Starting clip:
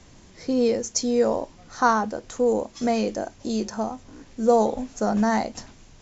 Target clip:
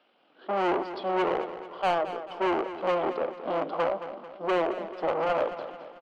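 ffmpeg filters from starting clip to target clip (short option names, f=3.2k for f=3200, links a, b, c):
-filter_complex "[0:a]acrossover=split=1900[a][b];[a]dynaudnorm=f=150:g=5:m=16dB[c];[c][b]amix=inputs=2:normalize=0,acrusher=bits=9:mix=0:aa=0.000001,aemphasis=mode=reproduction:type=riaa,asetrate=34006,aresample=44100,atempo=1.29684,asoftclip=type=tanh:threshold=-12dB,alimiter=limit=-19dB:level=0:latency=1:release=49,agate=range=-14dB:threshold=-23dB:ratio=16:detection=peak,highpass=f=360:w=0.5412,highpass=f=360:w=1.3066,equalizer=f=420:t=q:w=4:g=-8,equalizer=f=900:t=q:w=4:g=-3,equalizer=f=1.8k:t=q:w=4:g=-6,equalizer=f=3k:t=q:w=4:g=10,lowpass=f=4.3k:w=0.5412,lowpass=f=4.3k:w=1.3066,asplit=2[d][e];[e]highpass=f=720:p=1,volume=17dB,asoftclip=type=tanh:threshold=-15.5dB[f];[d][f]amix=inputs=2:normalize=0,lowpass=f=2k:p=1,volume=-6dB,aecho=1:1:220|440|660|880|1100:0.251|0.118|0.0555|0.0261|0.0123"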